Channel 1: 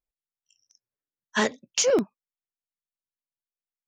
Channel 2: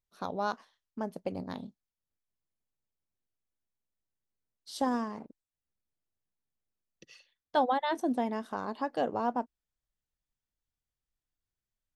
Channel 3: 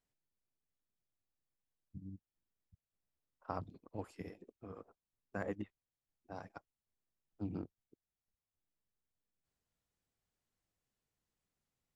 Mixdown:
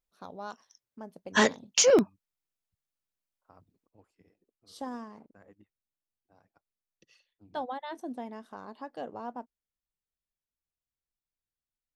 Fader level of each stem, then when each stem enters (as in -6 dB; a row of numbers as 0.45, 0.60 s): +1.0, -8.5, -17.5 dB; 0.00, 0.00, 0.00 s